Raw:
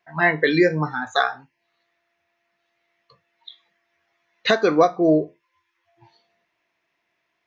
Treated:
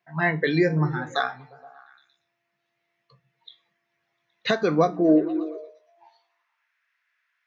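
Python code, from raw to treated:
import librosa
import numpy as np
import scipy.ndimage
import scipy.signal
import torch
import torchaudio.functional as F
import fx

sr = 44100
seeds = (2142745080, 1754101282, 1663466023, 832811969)

y = fx.echo_stepped(x, sr, ms=117, hz=160.0, octaves=0.7, feedback_pct=70, wet_db=-10.5)
y = fx.filter_sweep_highpass(y, sr, from_hz=130.0, to_hz=1500.0, start_s=4.62, end_s=6.69, q=3.7)
y = F.gain(torch.from_numpy(y), -5.5).numpy()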